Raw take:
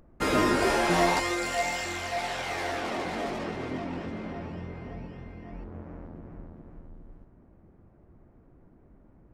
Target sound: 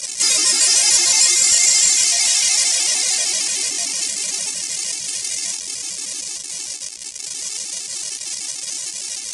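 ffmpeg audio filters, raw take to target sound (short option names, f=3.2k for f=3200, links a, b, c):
-filter_complex "[0:a]aeval=exprs='val(0)+0.5*0.0376*sgn(val(0))':c=same,highpass=f=770:p=1,highshelf=f=4.6k:t=q:w=1.5:g=9,asplit=2[a][b];[b]alimiter=limit=-18.5dB:level=0:latency=1,volume=-2.5dB[c];[a][c]amix=inputs=2:normalize=0,aexciter=amount=6.6:drive=8.4:freq=2.1k,volume=-3dB,asoftclip=hard,volume=3dB,flanger=delay=3.3:depth=7.3:regen=-43:speed=0.65:shape=triangular,aresample=22050,aresample=44100,afftfilt=real='re*gt(sin(2*PI*6.6*pts/sr)*(1-2*mod(floor(b*sr/1024/230),2)),0)':imag='im*gt(sin(2*PI*6.6*pts/sr)*(1-2*mod(floor(b*sr/1024/230),2)),0)':win_size=1024:overlap=0.75,volume=-3dB"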